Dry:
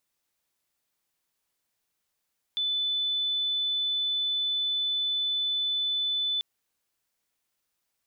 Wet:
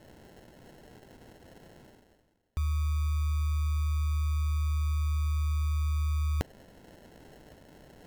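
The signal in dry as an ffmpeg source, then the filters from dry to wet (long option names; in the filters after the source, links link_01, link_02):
-f lavfi -i "sine=frequency=3500:duration=3.84:sample_rate=44100,volume=-6.94dB"
-af "areverse,acompressor=mode=upward:threshold=-31dB:ratio=2.5,areverse,acrusher=samples=37:mix=1:aa=0.000001"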